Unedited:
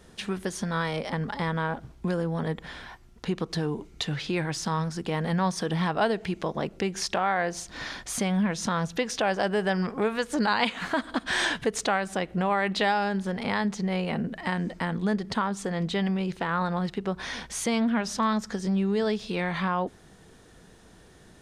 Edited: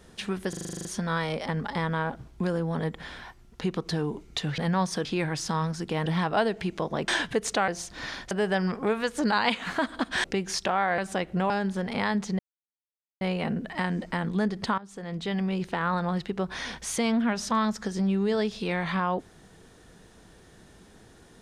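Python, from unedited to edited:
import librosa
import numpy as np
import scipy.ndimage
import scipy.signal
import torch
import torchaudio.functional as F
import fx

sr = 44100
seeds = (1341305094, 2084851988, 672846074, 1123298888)

y = fx.edit(x, sr, fx.stutter(start_s=0.49, slice_s=0.04, count=10),
    fx.move(start_s=5.23, length_s=0.47, to_s=4.22),
    fx.swap(start_s=6.72, length_s=0.74, other_s=11.39, other_length_s=0.6),
    fx.cut(start_s=8.09, length_s=1.37),
    fx.cut(start_s=12.51, length_s=0.49),
    fx.insert_silence(at_s=13.89, length_s=0.82),
    fx.fade_in_from(start_s=15.46, length_s=0.76, floor_db=-18.5), tone=tone)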